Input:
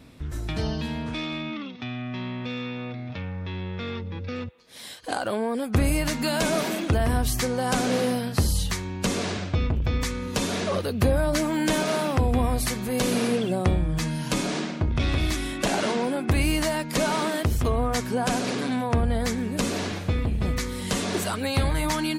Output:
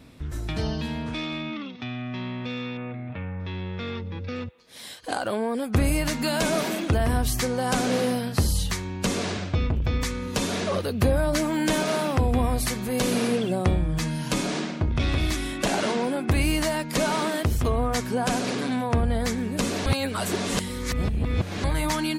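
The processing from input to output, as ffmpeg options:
-filter_complex "[0:a]asettb=1/sr,asplit=3[a][b][c];[a]atrim=end=2.774[d];[b]atrim=start=2.77:end=3.4,asetpts=PTS-STARTPTS,afade=t=in:d=0.004:c=qsin,afade=t=out:st=0.626:d=0.004:c=qsin,lowpass=f=2.6k:w=0.5412,lowpass=f=2.6k:w=1.3066[e];[c]atrim=start=3.396[f];[d][e]acrossfade=d=0.004:c1=hsin:c2=qsin[g];[g][f]acrossfade=d=0.004:c1=qsin:c2=hsin,asplit=3[h][i][j];[h]atrim=end=19.862[k];[i]atrim=start=19.858:end=21.642,asetpts=PTS-STARTPTS,areverse[l];[j]atrim=start=21.638[m];[k][l]acrossfade=d=0.004:c1=hsin:c2=hsin[n];[n][m]acrossfade=d=0.004:c1=hsin:c2=hsin"

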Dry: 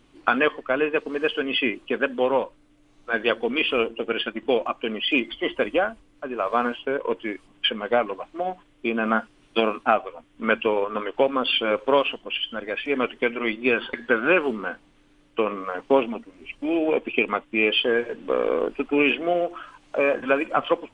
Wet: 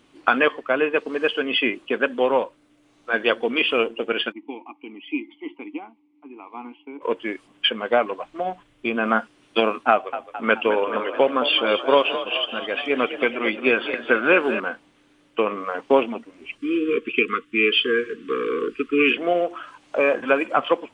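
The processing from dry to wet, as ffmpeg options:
-filter_complex "[0:a]asplit=3[a][b][c];[a]afade=t=out:st=4.31:d=0.02[d];[b]asplit=3[e][f][g];[e]bandpass=f=300:t=q:w=8,volume=0dB[h];[f]bandpass=f=870:t=q:w=8,volume=-6dB[i];[g]bandpass=f=2.24k:t=q:w=8,volume=-9dB[j];[h][i][j]amix=inputs=3:normalize=0,afade=t=in:st=4.31:d=0.02,afade=t=out:st=7.01:d=0.02[k];[c]afade=t=in:st=7.01:d=0.02[l];[d][k][l]amix=inputs=3:normalize=0,asplit=3[m][n][o];[m]afade=t=out:st=8.23:d=0.02[p];[n]asubboost=boost=3:cutoff=150,afade=t=in:st=8.23:d=0.02,afade=t=out:st=8.95:d=0.02[q];[o]afade=t=in:st=8.95:d=0.02[r];[p][q][r]amix=inputs=3:normalize=0,asettb=1/sr,asplit=3[s][t][u];[s]atrim=end=9.914[v];[t]atrim=start=9.91:end=14.6,asetpts=PTS-STARTPTS,afade=t=in:d=0.004:c=qsin,afade=t=out:st=4.686:d=0.004:c=qsin,asplit=8[w][x][y][z][aa][ab][ac][ad];[x]adelay=215,afreqshift=39,volume=-11dB[ae];[y]adelay=430,afreqshift=78,volume=-15.2dB[af];[z]adelay=645,afreqshift=117,volume=-19.3dB[ag];[aa]adelay=860,afreqshift=156,volume=-23.5dB[ah];[ab]adelay=1075,afreqshift=195,volume=-27.6dB[ai];[ac]adelay=1290,afreqshift=234,volume=-31.8dB[aj];[ad]adelay=1505,afreqshift=273,volume=-35.9dB[ak];[w][ae][af][ag][ah][ai][aj][ak]amix=inputs=8:normalize=0,atrim=end_sample=206829[al];[u]atrim=start=14.596[am];[v][al]acrossfade=d=0.004:c1=hsin:c2=qsin[an];[an][am]acrossfade=d=0.004:c1=qsin:c2=hsin,asettb=1/sr,asplit=3[ao][ap][aq];[ao]atrim=end=16.584[ar];[ap]atrim=start=16.58:end=19.17,asetpts=PTS-STARTPTS,afade=t=in:d=0.004:c=qsin,afade=t=out:st=2.586:d=0.004:c=qsin,asuperstop=centerf=720:order=20:qfactor=1.2[as];[aq]atrim=start=19.166[at];[ar][as]acrossfade=d=0.004:c1=hsin:c2=qsin[au];[au][at]acrossfade=d=0.004:c1=qsin:c2=hsin,highpass=f=190:p=1,volume=2.5dB"

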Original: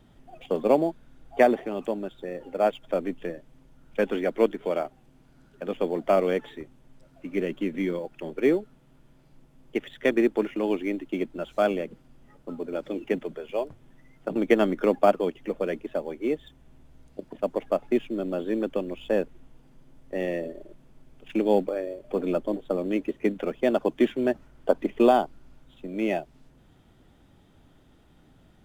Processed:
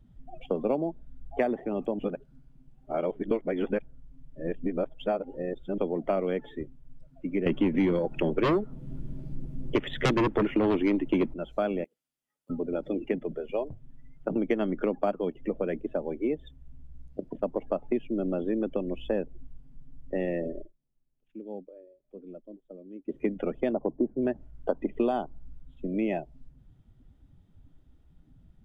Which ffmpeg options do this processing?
-filter_complex "[0:a]asettb=1/sr,asplit=3[a][b][c];[a]atrim=end=7.464[d];[b]atrim=start=7.46:end=11.34,asetpts=PTS-STARTPTS,afade=t=in:d=0.004:c=qsin,afade=t=out:st=3.876:d=0.004:c=qsin,aeval=exprs='0.316*sin(PI/2*3.16*val(0)/0.316)':c=same[e];[c]atrim=start=11.336[f];[d][e]acrossfade=d=0.004:c1=hsin:c2=qsin[g];[g][f]acrossfade=d=0.004:c1=qsin:c2=hsin,asettb=1/sr,asplit=3[h][i][j];[h]atrim=end=11.844[k];[i]atrim=start=11.84:end=12.5,asetpts=PTS-STARTPTS,afade=t=in:d=0.004:c=qsin,afade=t=out:st=0.656:d=0.004:c=qsin,aderivative[l];[j]atrim=start=12.496[m];[k][l]acrossfade=d=0.004:c1=hsin:c2=qsin[n];[n][m]acrossfade=d=0.004:c1=qsin:c2=hsin,asplit=3[o][p][q];[o]afade=t=out:st=23.72:d=0.02[r];[p]lowpass=f=1k:w=0.5412,lowpass=f=1k:w=1.3066,afade=t=in:st=23.72:d=0.02,afade=t=out:st=24.21:d=0.02[s];[q]afade=t=in:st=24.21:d=0.02[t];[r][s][t]amix=inputs=3:normalize=0,asplit=5[u][v][w][x][y];[u]atrim=end=1.992[z];[v]atrim=start=1.988:end=5.782,asetpts=PTS-STARTPTS,areverse[aa];[w]atrim=start=5.778:end=20.71,asetpts=PTS-STARTPTS,afade=t=out:st=14.812:d=0.12:silence=0.0944061[ab];[x]atrim=start=20.71:end=23.05,asetpts=PTS-STARTPTS,volume=-20.5dB[ac];[y]atrim=start=23.05,asetpts=PTS-STARTPTS,afade=t=in:d=0.12:silence=0.0944061[ad];[z][aa]acrossfade=d=0.004:c1=hsin:c2=hsin[ae];[ab][ac][ad]concat=n=3:v=0:a=1[af];[ae][af]acrossfade=d=0.004:c1=hsin:c2=hsin,afftdn=nr=15:nf=-43,lowshelf=f=260:g=9,acompressor=threshold=-26dB:ratio=3"

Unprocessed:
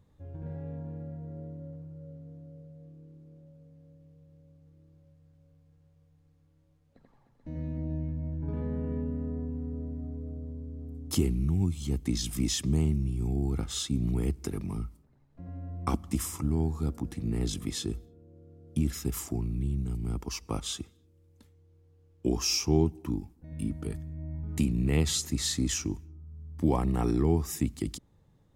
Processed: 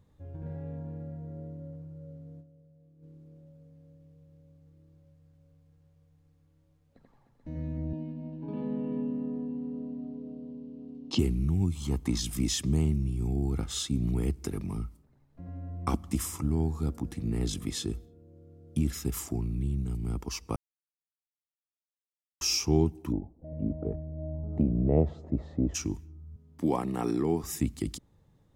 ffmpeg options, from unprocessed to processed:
-filter_complex "[0:a]asettb=1/sr,asplit=3[a][b][c];[a]atrim=end=7.934[d];[b]atrim=start=7.93:end=11.19,asetpts=PTS-STARTPTS,afade=t=in:d=0.004:c=qsin,afade=t=out:st=3.256:d=0.004:c=qsin,highpass=f=170:w=0.5412,highpass=f=170:w=1.3066,equalizer=f=220:t=q:w=4:g=7,equalizer=f=920:t=q:w=4:g=4,equalizer=f=1.4k:t=q:w=4:g=-8,equalizer=f=2k:t=q:w=4:g=-6,equalizer=f=2.8k:t=q:w=4:g=9,equalizer=f=4.1k:t=q:w=4:g=5,lowpass=f=5.4k:w=0.5412,lowpass=f=5.4k:w=1.3066[e];[c]atrim=start=11.186[f];[d][e]acrossfade=d=0.004:c1=hsin:c2=qsin[g];[g][f]acrossfade=d=0.004:c1=qsin:c2=hsin,asettb=1/sr,asplit=3[h][i][j];[h]atrim=end=11.754[k];[i]atrim=start=11.75:end=12.2,asetpts=PTS-STARTPTS,afade=t=in:d=0.004:c=qsin,afade=t=out:st=0.446:d=0.004:c=qsin,equalizer=f=1k:w=1.6:g=12[l];[j]atrim=start=12.196[m];[k][l]acrossfade=d=0.004:c1=hsin:c2=qsin[n];[n][m]acrossfade=d=0.004:c1=qsin:c2=hsin,asplit=3[o][p][q];[o]afade=t=out:st=23.11:d=0.02[r];[p]lowpass=f=620:t=q:w=5.7,afade=t=in:st=23.11:d=0.02,afade=t=out:st=25.74:d=0.02[s];[q]afade=t=in:st=25.74:d=0.02[t];[r][s][t]amix=inputs=3:normalize=0,asettb=1/sr,asplit=3[u][v][w];[u]atrim=end=26.364[x];[v]atrim=start=26.36:end=27.44,asetpts=PTS-STARTPTS,afade=t=in:d=0.004:c=qsin,afade=t=out:st=1.076:d=0.004:c=qsin,highpass=190[y];[w]atrim=start=27.436[z];[x][y]acrossfade=d=0.004:c1=hsin:c2=qsin[aa];[aa][z]acrossfade=d=0.004:c1=qsin:c2=hsin,asplit=5[ab][ac][ad][ae][af];[ab]atrim=end=2.65,asetpts=PTS-STARTPTS,afade=t=out:st=2.4:d=0.25:c=exp:silence=0.316228[ag];[ac]atrim=start=2.65:end=2.79,asetpts=PTS-STARTPTS,volume=-10dB[ah];[ad]atrim=start=2.79:end=20.56,asetpts=PTS-STARTPTS,afade=t=in:d=0.25:c=exp:silence=0.316228,afade=t=out:st=17.766:d=0.004:c=hsin[ai];[ae]atrim=start=20.56:end=22.41,asetpts=PTS-STARTPTS,volume=0[aj];[af]atrim=start=22.41,asetpts=PTS-STARTPTS,afade=t=in:d=0.004:c=hsin[ak];[ag][ah][ai][aj][ak]concat=n=5:v=0:a=1"

